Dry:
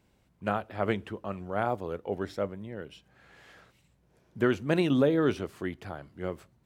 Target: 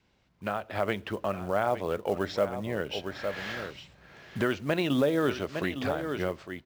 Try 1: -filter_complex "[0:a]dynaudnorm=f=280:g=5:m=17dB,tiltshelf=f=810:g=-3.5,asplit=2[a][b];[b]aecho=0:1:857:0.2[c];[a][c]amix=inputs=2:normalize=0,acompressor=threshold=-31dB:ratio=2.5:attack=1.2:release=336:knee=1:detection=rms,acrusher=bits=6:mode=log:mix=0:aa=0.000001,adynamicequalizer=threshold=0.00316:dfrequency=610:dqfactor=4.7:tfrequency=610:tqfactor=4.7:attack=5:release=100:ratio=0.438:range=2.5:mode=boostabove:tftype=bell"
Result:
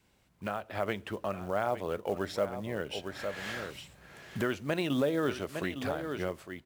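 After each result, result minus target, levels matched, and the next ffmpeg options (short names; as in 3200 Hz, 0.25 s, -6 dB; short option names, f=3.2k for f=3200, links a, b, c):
8000 Hz band +4.0 dB; compressor: peak gain reduction +3.5 dB
-filter_complex "[0:a]dynaudnorm=f=280:g=5:m=17dB,lowpass=f=5.9k:w=0.5412,lowpass=f=5.9k:w=1.3066,tiltshelf=f=810:g=-3.5,asplit=2[a][b];[b]aecho=0:1:857:0.2[c];[a][c]amix=inputs=2:normalize=0,acompressor=threshold=-31dB:ratio=2.5:attack=1.2:release=336:knee=1:detection=rms,acrusher=bits=6:mode=log:mix=0:aa=0.000001,adynamicequalizer=threshold=0.00316:dfrequency=610:dqfactor=4.7:tfrequency=610:tqfactor=4.7:attack=5:release=100:ratio=0.438:range=2.5:mode=boostabove:tftype=bell"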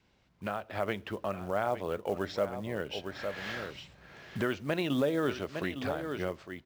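compressor: peak gain reduction +3.5 dB
-filter_complex "[0:a]dynaudnorm=f=280:g=5:m=17dB,lowpass=f=5.9k:w=0.5412,lowpass=f=5.9k:w=1.3066,tiltshelf=f=810:g=-3.5,asplit=2[a][b];[b]aecho=0:1:857:0.2[c];[a][c]amix=inputs=2:normalize=0,acompressor=threshold=-25dB:ratio=2.5:attack=1.2:release=336:knee=1:detection=rms,acrusher=bits=6:mode=log:mix=0:aa=0.000001,adynamicequalizer=threshold=0.00316:dfrequency=610:dqfactor=4.7:tfrequency=610:tqfactor=4.7:attack=5:release=100:ratio=0.438:range=2.5:mode=boostabove:tftype=bell"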